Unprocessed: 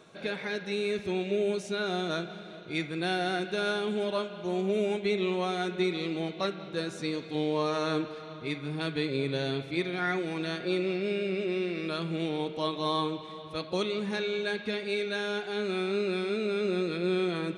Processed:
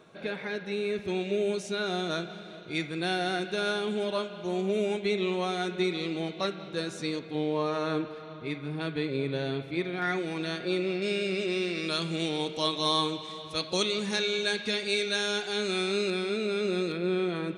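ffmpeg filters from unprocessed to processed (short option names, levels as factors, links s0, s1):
-af "asetnsamples=n=441:p=0,asendcmd='1.08 equalizer g 3;7.19 equalizer g -6.5;10.02 equalizer g 2.5;11.02 equalizer g 14.5;16.1 equalizer g 6.5;16.92 equalizer g -4.5',equalizer=f=6900:t=o:w=1.9:g=-5.5"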